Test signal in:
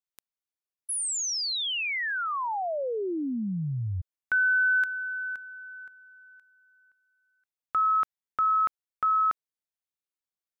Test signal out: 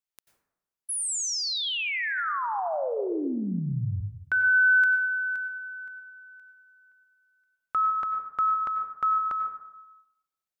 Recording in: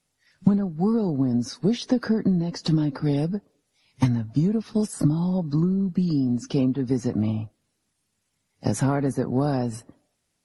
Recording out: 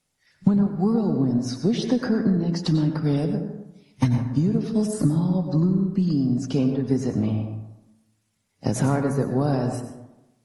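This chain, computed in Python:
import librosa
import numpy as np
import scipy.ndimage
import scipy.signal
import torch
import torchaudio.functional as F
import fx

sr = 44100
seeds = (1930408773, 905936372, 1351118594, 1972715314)

y = fx.rev_plate(x, sr, seeds[0], rt60_s=0.97, hf_ratio=0.4, predelay_ms=80, drr_db=5.5)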